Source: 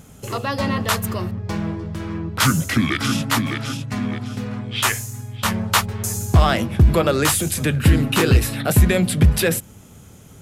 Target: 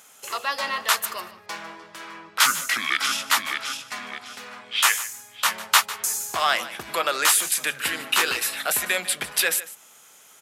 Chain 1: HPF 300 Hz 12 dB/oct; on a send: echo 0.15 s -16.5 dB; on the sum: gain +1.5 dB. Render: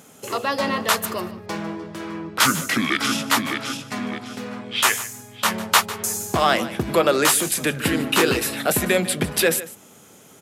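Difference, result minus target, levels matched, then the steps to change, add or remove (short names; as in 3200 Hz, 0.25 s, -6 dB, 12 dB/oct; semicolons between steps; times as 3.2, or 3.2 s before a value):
250 Hz band +17.0 dB
change: HPF 1000 Hz 12 dB/oct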